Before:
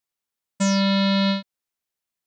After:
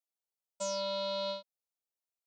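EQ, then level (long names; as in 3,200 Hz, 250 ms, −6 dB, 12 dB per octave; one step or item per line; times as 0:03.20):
four-pole ladder high-pass 350 Hz, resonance 50%
phaser with its sweep stopped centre 770 Hz, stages 4
notch filter 1,100 Hz, Q 7
0.0 dB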